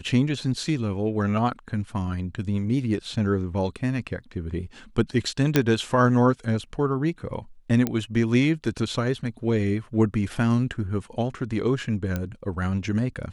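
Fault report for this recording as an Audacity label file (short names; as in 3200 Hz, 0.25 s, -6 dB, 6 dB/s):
5.560000	5.560000	pop -4 dBFS
7.870000	7.870000	pop -11 dBFS
12.160000	12.160000	pop -14 dBFS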